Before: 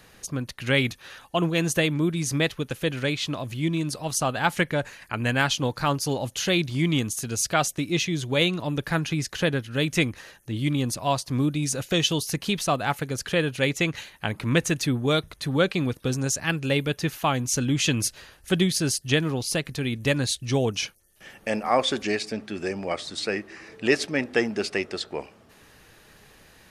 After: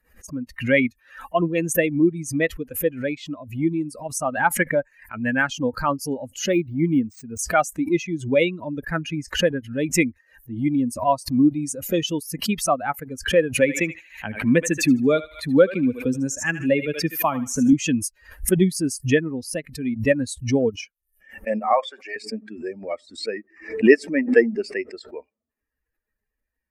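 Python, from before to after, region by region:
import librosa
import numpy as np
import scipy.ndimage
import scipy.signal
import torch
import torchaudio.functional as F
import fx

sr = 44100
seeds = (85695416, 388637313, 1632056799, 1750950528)

y = fx.chain(x, sr, fx.high_shelf(hz=3100.0, db=-8.0),
    fx.resample_linear(factor=3), at=(6.52, 7.39))
y = fx.chain(y, sr, fx.echo_thinned(ms=77, feedback_pct=52, hz=590.0, wet_db=-6.5),
    fx.band_squash(depth_pct=40), at=(13.54, 17.73))
y = fx.chain(y, sr, fx.highpass(hz=650.0, slope=12),
    fx.high_shelf(hz=6600.0, db=-6.0), at=(21.73, 22.16))
y = fx.bin_expand(y, sr, power=2.0)
y = fx.graphic_eq(y, sr, hz=(125, 250, 500, 1000, 2000, 4000, 8000), db=(-4, 12, 10, 4, 10, -10, 6))
y = fx.pre_swell(y, sr, db_per_s=130.0)
y = F.gain(torch.from_numpy(y), -1.0).numpy()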